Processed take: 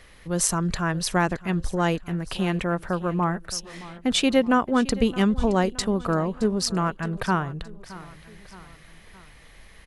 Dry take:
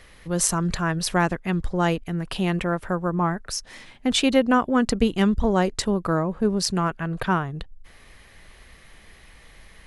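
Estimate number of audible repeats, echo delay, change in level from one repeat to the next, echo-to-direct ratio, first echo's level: 3, 0.619 s, -5.5 dB, -16.5 dB, -18.0 dB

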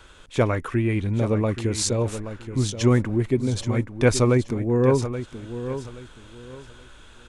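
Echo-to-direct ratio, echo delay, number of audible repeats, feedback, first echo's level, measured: -10.5 dB, 0.826 s, 3, 26%, -11.0 dB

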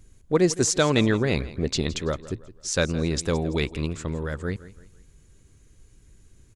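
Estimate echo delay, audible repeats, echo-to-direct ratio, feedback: 0.166 s, 3, -16.5 dB, 39%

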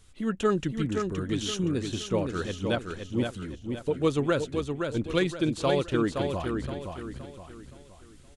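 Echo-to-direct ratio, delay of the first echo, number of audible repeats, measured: -5.0 dB, 0.519 s, 4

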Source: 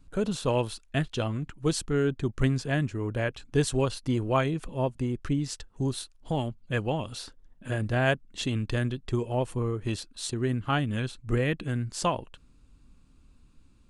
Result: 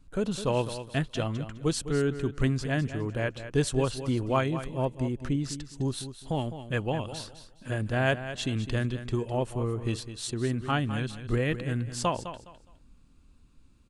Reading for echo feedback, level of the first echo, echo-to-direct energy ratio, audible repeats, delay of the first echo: 24%, -11.5 dB, -11.0 dB, 2, 0.207 s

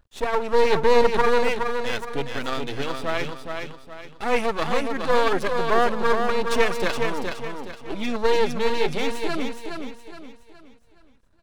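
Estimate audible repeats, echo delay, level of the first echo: 4, 0.418 s, -5.5 dB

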